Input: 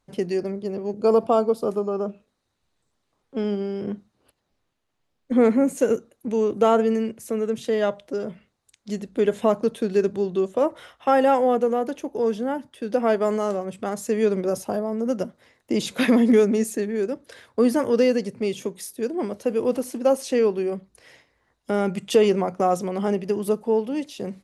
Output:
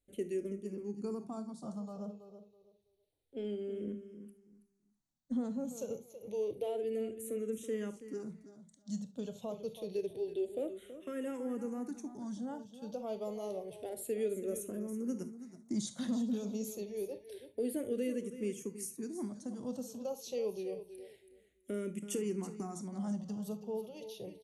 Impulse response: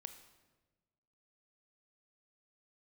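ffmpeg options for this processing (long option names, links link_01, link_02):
-filter_complex "[0:a]highshelf=frequency=5300:gain=5.5,alimiter=limit=-13.5dB:level=0:latency=1:release=292,equalizer=frequency=1300:width=0.53:gain=-12,bandreject=frequency=5000:width=8.2,aecho=1:1:327|654|981:0.251|0.0553|0.0122[link_01];[1:a]atrim=start_sample=2205,atrim=end_sample=3528[link_02];[link_01][link_02]afir=irnorm=-1:irlink=0,asplit=2[link_03][link_04];[link_04]afreqshift=-0.28[link_05];[link_03][link_05]amix=inputs=2:normalize=1,volume=-2dB"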